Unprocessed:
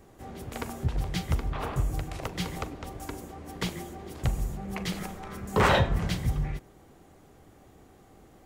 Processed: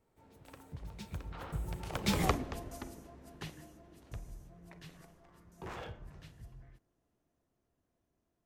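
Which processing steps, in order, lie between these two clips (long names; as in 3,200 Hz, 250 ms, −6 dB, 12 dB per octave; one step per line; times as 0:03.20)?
wavefolder on the positive side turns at −17 dBFS
source passing by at 0:02.24, 46 m/s, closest 5.3 metres
level +6 dB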